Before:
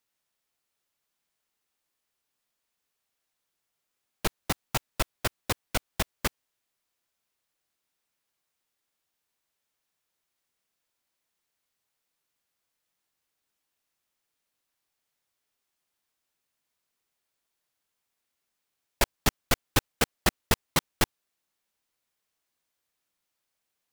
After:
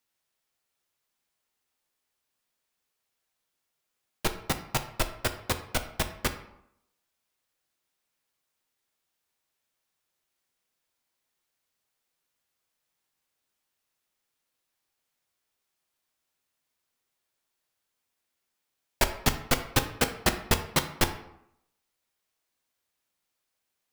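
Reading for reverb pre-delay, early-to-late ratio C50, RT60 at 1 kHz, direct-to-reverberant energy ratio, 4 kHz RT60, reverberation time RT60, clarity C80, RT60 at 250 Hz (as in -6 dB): 5 ms, 11.0 dB, 0.75 s, 7.0 dB, 0.50 s, 0.75 s, 14.0 dB, 0.80 s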